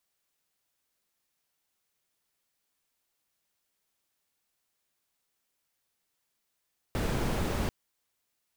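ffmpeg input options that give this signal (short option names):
-f lavfi -i "anoisesrc=c=brown:a=0.157:d=0.74:r=44100:seed=1"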